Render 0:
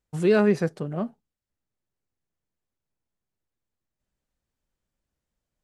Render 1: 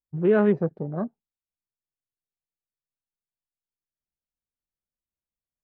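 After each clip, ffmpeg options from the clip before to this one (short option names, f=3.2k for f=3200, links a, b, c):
-af "lowpass=1.8k,afwtdn=0.0158"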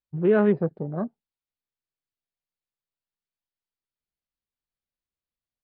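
-af "aresample=11025,aresample=44100"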